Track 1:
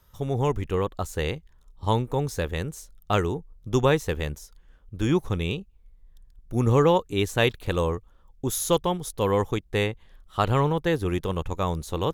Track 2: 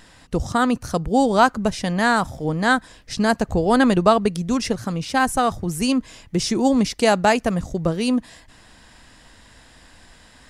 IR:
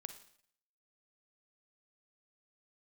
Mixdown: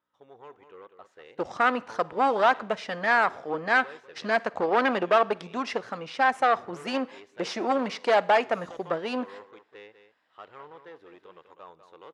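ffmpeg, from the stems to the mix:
-filter_complex "[0:a]asoftclip=type=tanh:threshold=-20.5dB,aeval=exprs='val(0)+0.00141*(sin(2*PI*60*n/s)+sin(2*PI*2*60*n/s)/2+sin(2*PI*3*60*n/s)/3+sin(2*PI*4*60*n/s)/4+sin(2*PI*5*60*n/s)/5)':channel_layout=same,volume=-17dB,asplit=3[link_01][link_02][link_03];[link_02]volume=-5dB[link_04];[link_03]volume=-8dB[link_05];[1:a]agate=range=-18dB:threshold=-36dB:ratio=16:detection=peak,aeval=exprs='0.188*(cos(1*acos(clip(val(0)/0.188,-1,1)))-cos(1*PI/2))+0.0376*(cos(2*acos(clip(val(0)/0.188,-1,1)))-cos(2*PI/2))+0.00376*(cos(7*acos(clip(val(0)/0.188,-1,1)))-cos(7*PI/2))':channel_layout=same,adelay=1050,volume=-2dB,asplit=2[link_06][link_07];[link_07]volume=-5dB[link_08];[2:a]atrim=start_sample=2205[link_09];[link_04][link_08]amix=inputs=2:normalize=0[link_10];[link_10][link_09]afir=irnorm=-1:irlink=0[link_11];[link_05]aecho=0:1:198:1[link_12];[link_01][link_06][link_11][link_12]amix=inputs=4:normalize=0,highpass=520,lowpass=2600"

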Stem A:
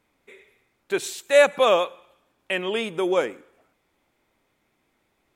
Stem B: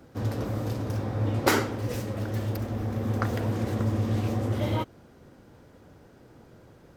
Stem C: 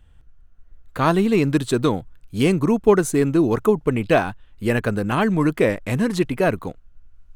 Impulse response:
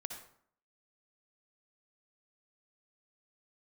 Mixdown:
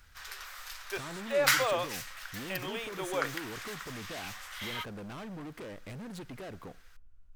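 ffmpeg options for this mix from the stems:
-filter_complex "[0:a]highpass=570,deesser=0.85,volume=-8dB[link_01];[1:a]highpass=frequency=1400:width=0.5412,highpass=frequency=1400:width=1.3066,volume=3dB[link_02];[2:a]acompressor=threshold=-21dB:ratio=6,asoftclip=type=tanh:threshold=-32dB,volume=-9.5dB,asplit=2[link_03][link_04];[link_04]volume=-15.5dB[link_05];[3:a]atrim=start_sample=2205[link_06];[link_05][link_06]afir=irnorm=-1:irlink=0[link_07];[link_01][link_02][link_03][link_07]amix=inputs=4:normalize=0"

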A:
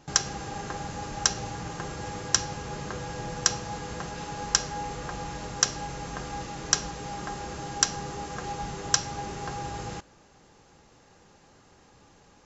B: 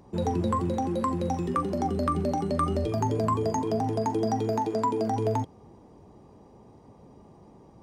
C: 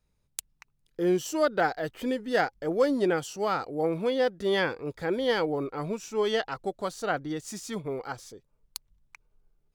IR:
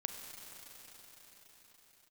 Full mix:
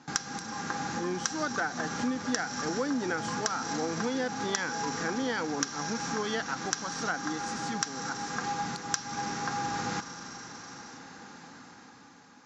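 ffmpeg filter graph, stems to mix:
-filter_complex "[0:a]volume=0dB,asplit=2[link_01][link_02];[link_02]volume=-6.5dB[link_03];[1:a]acompressor=threshold=-27dB:ratio=6,volume=-13dB[link_04];[2:a]volume=-4.5dB,asplit=2[link_05][link_06];[link_06]apad=whole_len=549081[link_07];[link_01][link_07]sidechaincompress=threshold=-45dB:ratio=8:attack=8.2:release=244[link_08];[3:a]atrim=start_sample=2205[link_09];[link_03][link_09]afir=irnorm=-1:irlink=0[link_10];[link_08][link_04][link_05][link_10]amix=inputs=4:normalize=0,dynaudnorm=framelen=220:gausssize=9:maxgain=8dB,highpass=200,equalizer=frequency=250:width_type=q:width=4:gain=7,equalizer=frequency=390:width_type=q:width=4:gain=-9,equalizer=frequency=590:width_type=q:width=4:gain=-10,equalizer=frequency=1500:width_type=q:width=4:gain=5,equalizer=frequency=2900:width_type=q:width=4:gain=-6,lowpass=frequency=6700:width=0.5412,lowpass=frequency=6700:width=1.3066,acompressor=threshold=-27dB:ratio=6"

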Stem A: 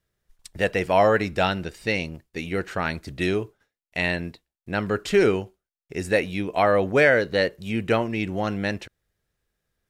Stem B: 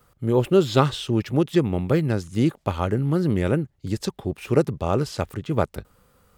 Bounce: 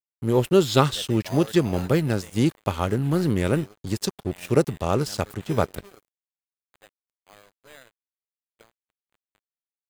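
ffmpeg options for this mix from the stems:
ffmpeg -i stem1.wav -i stem2.wav -filter_complex "[0:a]aexciter=amount=13.4:drive=8.9:freq=8600,highshelf=frequency=3500:gain=-6.5,acrusher=samples=8:mix=1:aa=0.000001,adelay=350,volume=-17dB,asplit=3[link_01][link_02][link_03];[link_01]atrim=end=7.62,asetpts=PTS-STARTPTS,afade=type=out:start_time=7.616:duration=0.004:curve=hsin[link_04];[link_02]atrim=start=7.62:end=8.22,asetpts=PTS-STARTPTS,volume=0[link_05];[link_03]atrim=start=8.22,asetpts=PTS-STARTPTS,afade=type=in:duration=0.004:curve=hsin[link_06];[link_04][link_05][link_06]concat=n=3:v=0:a=1,asplit=2[link_07][link_08];[link_08]volume=-5.5dB[link_09];[1:a]highshelf=frequency=4100:gain=9.5,volume=0dB,asplit=2[link_10][link_11];[link_11]apad=whole_len=451719[link_12];[link_07][link_12]sidechaingate=range=-28dB:threshold=-50dB:ratio=16:detection=peak[link_13];[link_09]aecho=0:1:342:1[link_14];[link_13][link_10][link_14]amix=inputs=3:normalize=0,aeval=exprs='sgn(val(0))*max(abs(val(0))-0.0112,0)':channel_layout=same" out.wav

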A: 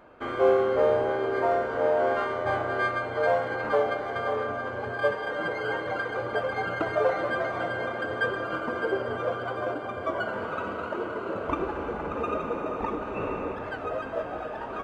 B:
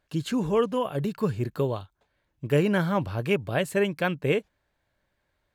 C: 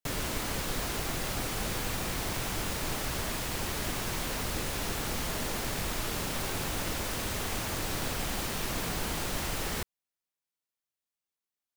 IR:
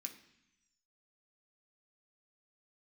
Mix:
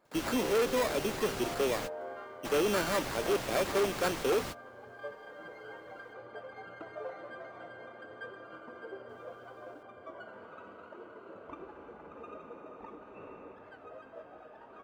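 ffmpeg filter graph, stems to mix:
-filter_complex "[0:a]volume=-18dB[link_01];[1:a]acrusher=samples=15:mix=1:aa=0.000001,highpass=frequency=270:width=0.5412,highpass=frequency=270:width=1.3066,volume=-0.5dB,asplit=2[link_02][link_03];[2:a]acrossover=split=2300|7200[link_04][link_05][link_06];[link_04]acompressor=threshold=-34dB:ratio=4[link_07];[link_05]acompressor=threshold=-45dB:ratio=4[link_08];[link_06]acompressor=threshold=-51dB:ratio=4[link_09];[link_07][link_08][link_09]amix=inputs=3:normalize=0,volume=-1dB,asplit=3[link_10][link_11][link_12];[link_10]atrim=end=6.13,asetpts=PTS-STARTPTS,afade=type=out:start_time=6.126:duration=0.004:curve=hsin[link_13];[link_11]atrim=start=6.13:end=9.09,asetpts=PTS-STARTPTS,volume=0[link_14];[link_12]atrim=start=9.09,asetpts=PTS-STARTPTS,afade=type=in:duration=0.004:curve=hsin[link_15];[link_13][link_14][link_15]concat=n=3:v=0:a=1[link_16];[link_03]apad=whole_len=518642[link_17];[link_16][link_17]sidechaingate=range=-33dB:threshold=-42dB:ratio=16:detection=peak[link_18];[link_01][link_02][link_18]amix=inputs=3:normalize=0,equalizer=frequency=180:width=0.32:gain=2.5,asoftclip=type=hard:threshold=-23.5dB,lowshelf=frequency=130:gain=-9.5"

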